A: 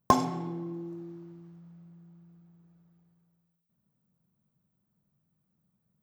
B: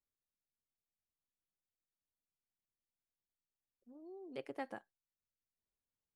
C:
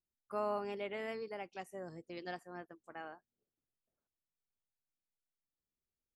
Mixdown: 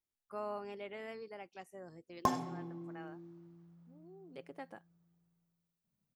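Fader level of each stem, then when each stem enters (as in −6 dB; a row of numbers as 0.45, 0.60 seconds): −9.0, −4.5, −4.5 decibels; 2.15, 0.00, 0.00 seconds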